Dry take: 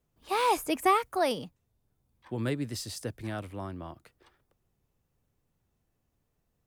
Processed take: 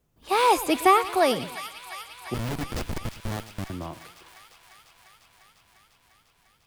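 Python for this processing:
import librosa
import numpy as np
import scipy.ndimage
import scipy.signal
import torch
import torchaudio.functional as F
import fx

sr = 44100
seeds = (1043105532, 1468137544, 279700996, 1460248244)

y = fx.schmitt(x, sr, flips_db=-31.5, at=(2.34, 3.7))
y = fx.echo_wet_highpass(y, sr, ms=349, feedback_pct=78, hz=1700.0, wet_db=-10.5)
y = fx.echo_warbled(y, sr, ms=115, feedback_pct=41, rate_hz=2.8, cents=128, wet_db=-16.5)
y = F.gain(torch.from_numpy(y), 6.0).numpy()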